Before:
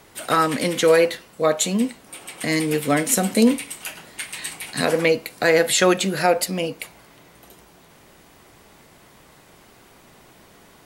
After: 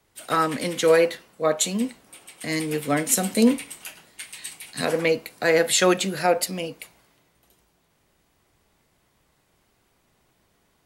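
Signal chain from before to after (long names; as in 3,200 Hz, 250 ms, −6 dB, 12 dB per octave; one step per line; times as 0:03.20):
multiband upward and downward expander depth 40%
level −4 dB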